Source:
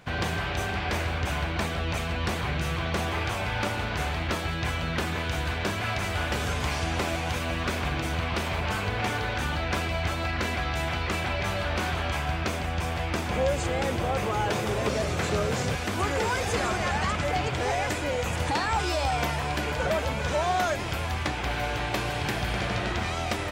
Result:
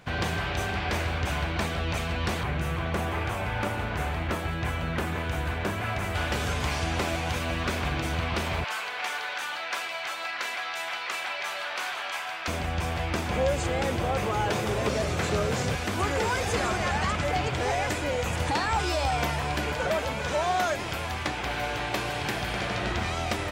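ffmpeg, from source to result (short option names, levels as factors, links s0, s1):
-filter_complex "[0:a]asettb=1/sr,asplit=3[s0][s1][s2];[s0]atrim=end=2.434[s3];[s1]atrim=start=2.43:end=6.15,asetpts=PTS-STARTPTS,afade=t=in:d=0.004:c=qsin,afade=t=out:st=3.716:d=0.004:c=qsin,equalizer=f=4700:w=0.87:g=-8[s4];[s2]atrim=start=6.146[s5];[s3][s4]acrossfade=d=0.004:c1=hsin:c2=qsin[s6];[s6][s5]acrossfade=d=0.004:c1=qsin:c2=hsin,asettb=1/sr,asplit=3[s7][s8][s9];[s7]atrim=end=8.644[s10];[s8]atrim=start=8.64:end=12.48,asetpts=PTS-STARTPTS,afade=t=in:d=0.004:c=qsin,afade=t=out:st=3.836:d=0.004:c=qsin,highpass=860[s11];[s9]atrim=start=12.476[s12];[s10][s11]acrossfade=d=0.004:c1=hsin:c2=qsin[s13];[s13][s12]acrossfade=d=0.004:c1=qsin:c2=hsin,asettb=1/sr,asplit=3[s14][s15][s16];[s14]atrim=end=19.734[s17];[s15]atrim=start=19.73:end=22.81,asetpts=PTS-STARTPTS,afade=t=in:d=0.004:c=qsin,afade=t=out:st=3.076:d=0.004:c=qsin,lowshelf=f=140:g=-7[s18];[s16]atrim=start=22.806[s19];[s17][s18]acrossfade=d=0.004:c1=hsin:c2=qsin[s20];[s20][s19]acrossfade=d=0.004:c1=qsin:c2=hsin"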